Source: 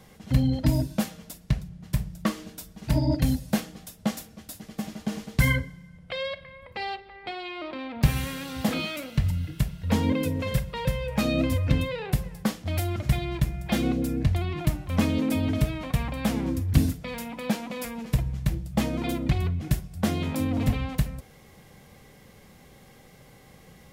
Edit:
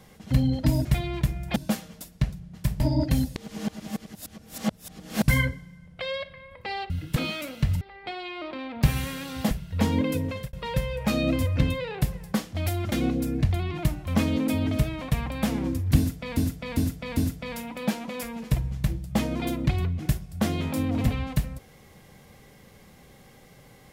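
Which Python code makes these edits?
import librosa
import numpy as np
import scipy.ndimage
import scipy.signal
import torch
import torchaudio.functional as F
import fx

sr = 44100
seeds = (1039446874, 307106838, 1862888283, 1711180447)

y = fx.edit(x, sr, fx.cut(start_s=2.09, length_s=0.82),
    fx.reverse_span(start_s=3.47, length_s=1.92),
    fx.swap(start_s=7.01, length_s=1.7, other_s=9.36, other_length_s=0.26),
    fx.fade_out_span(start_s=10.36, length_s=0.28),
    fx.move(start_s=13.03, length_s=0.71, to_s=0.85),
    fx.repeat(start_s=16.79, length_s=0.4, count=4), tone=tone)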